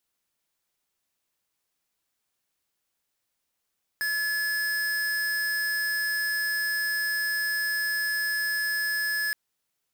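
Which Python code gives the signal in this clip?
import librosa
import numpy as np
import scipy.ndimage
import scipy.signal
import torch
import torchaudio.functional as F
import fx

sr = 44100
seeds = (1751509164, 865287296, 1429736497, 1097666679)

y = fx.tone(sr, length_s=5.32, wave='square', hz=1710.0, level_db=-27.5)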